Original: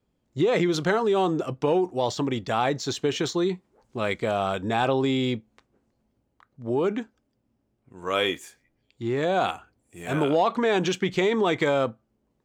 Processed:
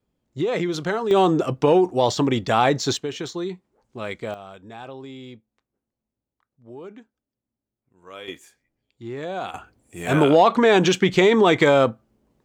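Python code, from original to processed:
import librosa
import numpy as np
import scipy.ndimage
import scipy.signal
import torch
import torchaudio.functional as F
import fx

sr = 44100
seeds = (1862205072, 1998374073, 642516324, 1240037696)

y = fx.gain(x, sr, db=fx.steps((0.0, -1.5), (1.11, 6.0), (2.97, -4.0), (4.34, -14.5), (8.28, -6.0), (9.54, 7.0)))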